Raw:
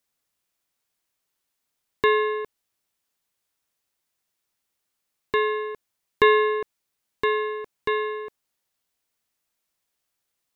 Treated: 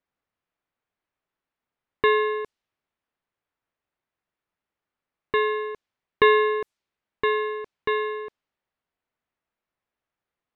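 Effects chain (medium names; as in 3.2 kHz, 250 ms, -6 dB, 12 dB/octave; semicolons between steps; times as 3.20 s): level-controlled noise filter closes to 2 kHz, open at -22.5 dBFS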